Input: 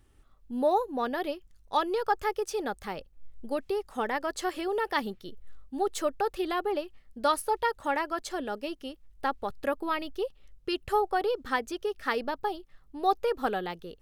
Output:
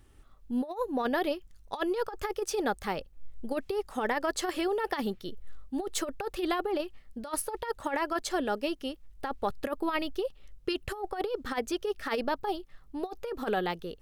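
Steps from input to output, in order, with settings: compressor with a negative ratio -30 dBFS, ratio -0.5; trim +1 dB

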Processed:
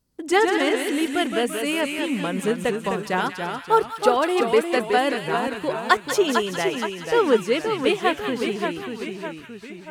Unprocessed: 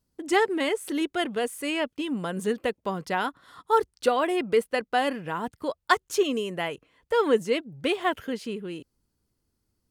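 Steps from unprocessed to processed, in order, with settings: ever faster or slower copies 99 ms, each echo -1 st, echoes 3, each echo -6 dB; feedback echo behind a high-pass 189 ms, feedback 46%, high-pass 1.8 kHz, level -6 dB; trim +3.5 dB

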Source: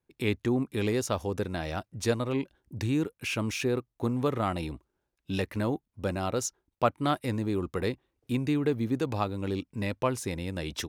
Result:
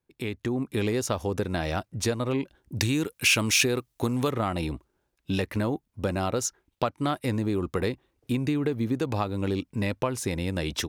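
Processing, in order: compression 6:1, threshold -29 dBFS, peak gain reduction 10.5 dB; 6.44–7.04 s: peaking EQ 1.3 kHz -> 7.2 kHz +8.5 dB 0.66 oct; level rider gain up to 6 dB; 2.75–4.31 s: treble shelf 2.1 kHz +11 dB

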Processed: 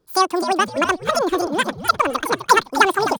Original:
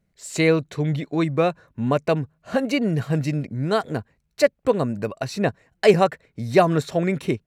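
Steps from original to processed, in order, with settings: speed mistake 33 rpm record played at 78 rpm; frequency-shifting echo 256 ms, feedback 31%, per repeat -130 Hz, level -10.5 dB; trim +2.5 dB

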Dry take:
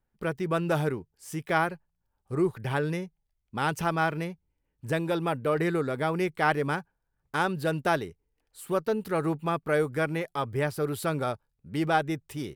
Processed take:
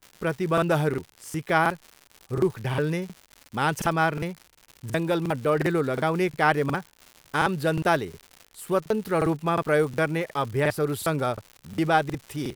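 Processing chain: crackle 190 per s -38 dBFS; crackling interface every 0.36 s, samples 2048, repeat, from 0.53 s; trim +3.5 dB

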